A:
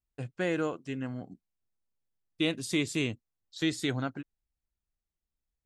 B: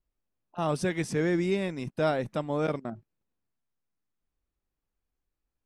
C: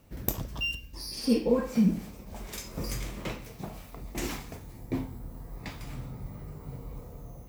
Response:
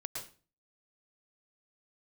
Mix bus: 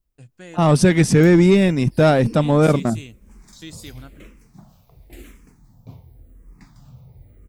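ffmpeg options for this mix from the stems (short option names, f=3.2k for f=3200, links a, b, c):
-filter_complex "[0:a]aemphasis=mode=production:type=75kf,volume=-12.5dB[a];[1:a]dynaudnorm=f=190:g=5:m=12.5dB,acontrast=70,volume=-5.5dB[b];[2:a]asplit=2[c][d];[d]afreqshift=-0.94[e];[c][e]amix=inputs=2:normalize=1,adelay=950,volume=-9dB[f];[a][b][f]amix=inputs=3:normalize=0,bass=f=250:g=7,treble=f=4k:g=2"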